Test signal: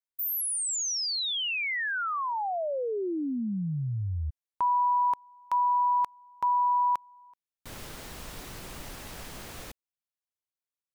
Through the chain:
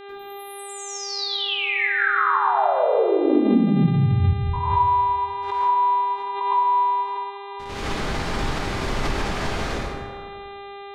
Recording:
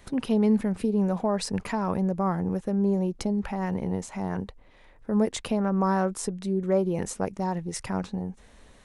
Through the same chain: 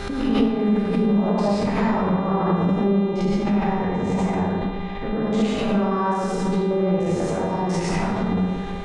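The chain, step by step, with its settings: stepped spectrum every 0.1 s; LPF 5000 Hz 12 dB/oct; compressor 6:1, threshold -37 dBFS; buzz 400 Hz, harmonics 10, -53 dBFS -6 dB/oct; plate-style reverb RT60 1.8 s, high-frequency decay 0.4×, pre-delay 85 ms, DRR -8.5 dB; backwards sustainer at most 46 dB/s; gain +9 dB

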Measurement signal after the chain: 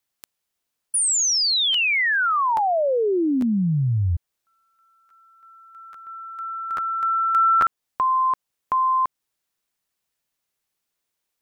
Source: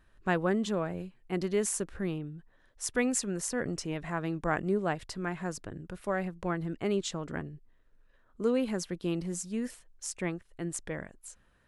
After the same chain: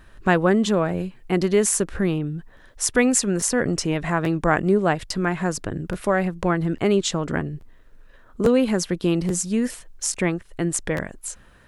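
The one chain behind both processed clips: in parallel at +1 dB: compressor, threshold -39 dBFS; on the sum: crackling interface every 0.84 s, samples 512, repeat, from 0.88; gain +8.5 dB

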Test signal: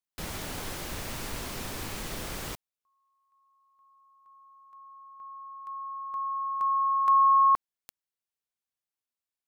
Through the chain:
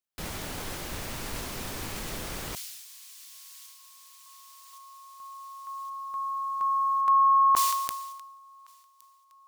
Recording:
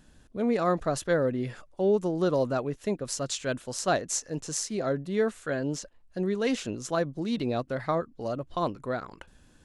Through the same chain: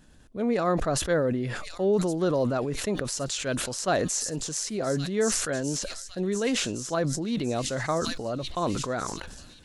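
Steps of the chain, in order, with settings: thin delay 1.115 s, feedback 57%, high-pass 4400 Hz, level -6.5 dB; sustainer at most 37 dB/s

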